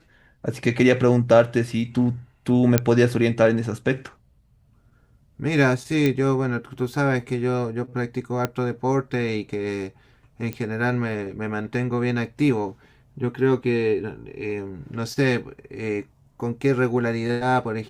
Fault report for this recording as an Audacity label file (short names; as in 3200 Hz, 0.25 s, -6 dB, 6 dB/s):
2.780000	2.780000	pop -3 dBFS
6.060000	6.060000	pop -10 dBFS
8.450000	8.450000	pop -9 dBFS
10.530000	10.530000	pop -16 dBFS